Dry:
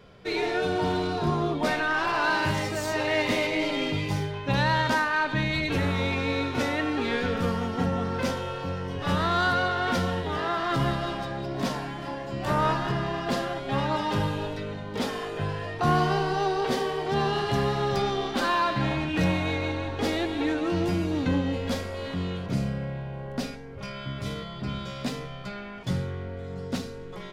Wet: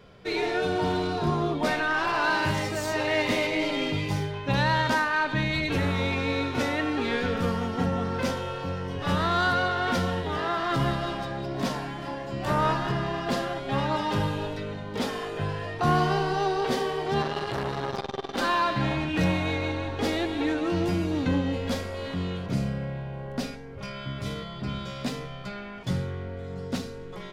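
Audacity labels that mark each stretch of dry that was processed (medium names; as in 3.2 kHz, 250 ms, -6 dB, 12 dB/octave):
17.220000	18.380000	transformer saturation saturates under 920 Hz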